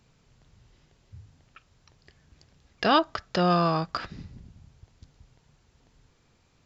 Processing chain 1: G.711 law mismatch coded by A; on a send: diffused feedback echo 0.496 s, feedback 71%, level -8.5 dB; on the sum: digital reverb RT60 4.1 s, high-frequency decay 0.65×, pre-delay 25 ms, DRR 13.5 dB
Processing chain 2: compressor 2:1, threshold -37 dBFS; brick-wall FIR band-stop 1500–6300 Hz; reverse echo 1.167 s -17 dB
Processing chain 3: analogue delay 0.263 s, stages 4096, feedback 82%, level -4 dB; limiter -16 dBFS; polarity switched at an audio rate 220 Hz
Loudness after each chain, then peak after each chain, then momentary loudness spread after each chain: -28.0, -37.5, -28.0 LUFS; -9.0, -21.5, -16.0 dBFS; 18, 22, 13 LU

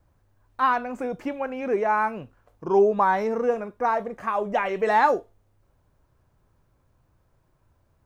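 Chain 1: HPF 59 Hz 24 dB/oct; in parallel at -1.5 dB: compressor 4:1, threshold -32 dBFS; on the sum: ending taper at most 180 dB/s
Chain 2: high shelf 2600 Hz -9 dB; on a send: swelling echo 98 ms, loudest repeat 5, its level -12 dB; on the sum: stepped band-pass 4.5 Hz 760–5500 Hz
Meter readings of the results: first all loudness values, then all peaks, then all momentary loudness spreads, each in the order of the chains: -22.5, -35.5 LUFS; -8.5, -15.5 dBFS; 11, 21 LU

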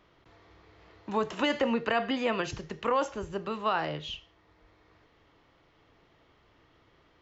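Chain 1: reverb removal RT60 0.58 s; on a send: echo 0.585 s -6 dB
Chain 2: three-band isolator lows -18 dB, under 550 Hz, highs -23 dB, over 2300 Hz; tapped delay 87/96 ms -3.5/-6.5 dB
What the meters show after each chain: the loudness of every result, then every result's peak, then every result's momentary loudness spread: -31.0, -32.5 LUFS; -15.5, -16.5 dBFS; 15, 11 LU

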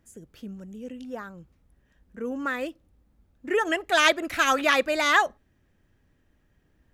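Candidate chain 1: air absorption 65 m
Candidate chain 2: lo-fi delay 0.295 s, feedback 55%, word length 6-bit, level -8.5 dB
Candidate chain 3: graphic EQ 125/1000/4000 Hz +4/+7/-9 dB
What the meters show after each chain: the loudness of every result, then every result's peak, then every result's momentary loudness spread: -24.5, -23.5, -21.5 LUFS; -4.5, -3.0, -4.5 dBFS; 19, 21, 20 LU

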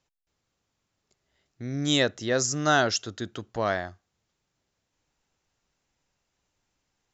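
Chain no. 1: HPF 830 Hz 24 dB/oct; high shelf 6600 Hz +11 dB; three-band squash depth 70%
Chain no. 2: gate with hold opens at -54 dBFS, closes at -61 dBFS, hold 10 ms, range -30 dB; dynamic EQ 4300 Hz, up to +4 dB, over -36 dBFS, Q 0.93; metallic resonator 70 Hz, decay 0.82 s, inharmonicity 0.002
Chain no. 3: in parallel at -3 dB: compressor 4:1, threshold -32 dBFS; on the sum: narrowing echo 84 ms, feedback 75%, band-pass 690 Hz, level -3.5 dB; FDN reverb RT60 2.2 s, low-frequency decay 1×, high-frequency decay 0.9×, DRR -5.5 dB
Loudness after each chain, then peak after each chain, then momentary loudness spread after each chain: -27.5, -35.5, -16.5 LUFS; -9.5, -20.0, -1.0 dBFS; 12, 16, 17 LU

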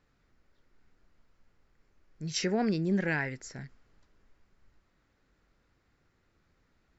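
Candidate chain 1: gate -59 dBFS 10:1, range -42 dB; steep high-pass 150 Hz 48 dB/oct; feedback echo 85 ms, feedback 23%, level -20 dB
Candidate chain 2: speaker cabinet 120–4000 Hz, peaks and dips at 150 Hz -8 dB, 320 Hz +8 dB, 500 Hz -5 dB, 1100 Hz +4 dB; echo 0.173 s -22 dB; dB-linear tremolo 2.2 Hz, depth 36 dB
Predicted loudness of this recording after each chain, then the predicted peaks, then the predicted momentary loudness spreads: -30.5, -37.0 LUFS; -17.0, -18.5 dBFS; 16, 19 LU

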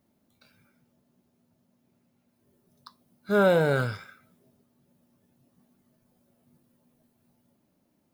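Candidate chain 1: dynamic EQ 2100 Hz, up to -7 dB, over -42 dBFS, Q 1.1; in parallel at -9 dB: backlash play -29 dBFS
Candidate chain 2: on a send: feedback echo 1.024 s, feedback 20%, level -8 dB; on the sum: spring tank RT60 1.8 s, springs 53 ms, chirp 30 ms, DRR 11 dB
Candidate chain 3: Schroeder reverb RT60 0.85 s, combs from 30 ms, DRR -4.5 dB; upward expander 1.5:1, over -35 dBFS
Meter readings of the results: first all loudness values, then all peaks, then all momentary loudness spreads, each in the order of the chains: -22.0, -26.0, -19.0 LUFS; -9.5, -10.5, -3.0 dBFS; 14, 23, 13 LU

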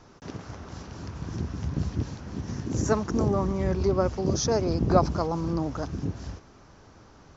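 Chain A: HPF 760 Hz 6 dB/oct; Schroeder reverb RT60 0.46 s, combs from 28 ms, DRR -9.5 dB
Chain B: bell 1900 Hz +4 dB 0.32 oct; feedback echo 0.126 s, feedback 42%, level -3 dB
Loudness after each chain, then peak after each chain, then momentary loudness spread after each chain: -24.5, -25.5 LUFS; -4.5, -2.5 dBFS; 17, 16 LU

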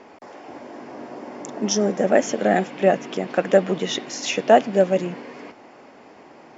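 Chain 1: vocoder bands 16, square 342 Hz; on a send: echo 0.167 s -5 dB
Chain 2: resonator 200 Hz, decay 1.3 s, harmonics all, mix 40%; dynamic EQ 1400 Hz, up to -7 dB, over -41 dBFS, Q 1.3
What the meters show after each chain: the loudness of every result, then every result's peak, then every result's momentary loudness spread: -20.5, -26.0 LUFS; -5.5, -8.0 dBFS; 17, 20 LU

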